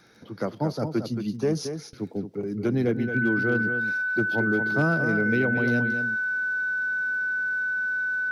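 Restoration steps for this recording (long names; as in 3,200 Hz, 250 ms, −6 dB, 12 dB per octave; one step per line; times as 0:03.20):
clipped peaks rebuilt −14.5 dBFS
click removal
notch filter 1,500 Hz, Q 30
echo removal 224 ms −8 dB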